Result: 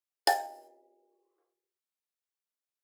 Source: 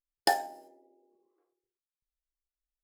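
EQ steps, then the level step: HPF 380 Hz 24 dB/oct; 0.0 dB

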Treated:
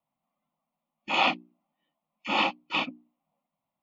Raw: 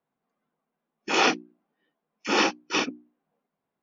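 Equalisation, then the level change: bell 560 Hz +6 dB 0.37 oct; fixed phaser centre 1600 Hz, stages 6; 0.0 dB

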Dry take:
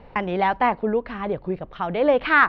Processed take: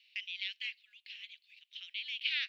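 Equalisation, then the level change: steep high-pass 2600 Hz 48 dB/oct; +2.5 dB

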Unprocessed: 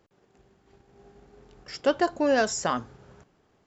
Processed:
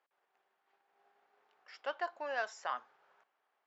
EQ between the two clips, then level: ladder band-pass 960 Hz, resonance 45%; tilt shelf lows -7.5 dB, about 1300 Hz; bell 830 Hz -6 dB 1.1 oct; +5.0 dB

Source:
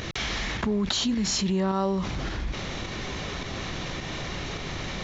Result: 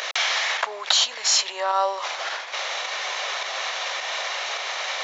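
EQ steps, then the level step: steep high-pass 580 Hz 36 dB/oct; +8.5 dB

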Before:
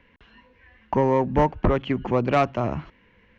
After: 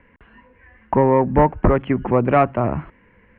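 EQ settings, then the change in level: LPF 2200 Hz 24 dB/oct; +5.0 dB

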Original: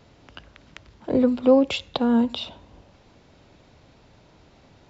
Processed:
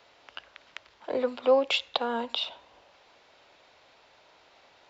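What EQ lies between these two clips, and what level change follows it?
three-band isolator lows -23 dB, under 480 Hz, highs -13 dB, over 4400 Hz; high shelf 3700 Hz +8 dB; 0.0 dB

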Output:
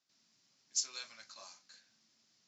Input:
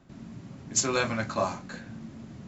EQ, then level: band-pass 5200 Hz, Q 3.1; -3.0 dB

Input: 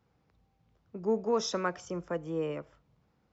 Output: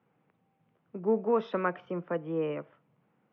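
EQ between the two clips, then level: HPF 140 Hz 24 dB/oct; steep low-pass 3000 Hz 36 dB/oct; +2.0 dB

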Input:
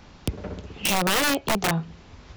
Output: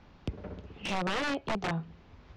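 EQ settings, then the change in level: air absorption 110 m; high shelf 4800 Hz -5.5 dB; -7.5 dB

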